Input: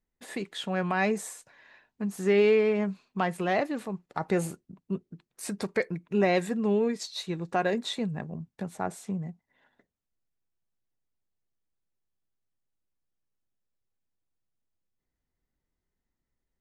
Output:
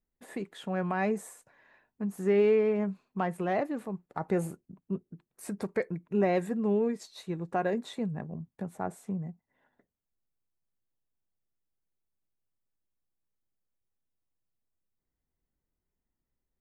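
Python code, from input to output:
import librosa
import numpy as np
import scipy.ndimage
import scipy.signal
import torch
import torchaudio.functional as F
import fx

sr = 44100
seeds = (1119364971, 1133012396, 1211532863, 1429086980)

y = fx.peak_eq(x, sr, hz=4400.0, db=-11.0, octaves=2.2)
y = y * 10.0 ** (-1.5 / 20.0)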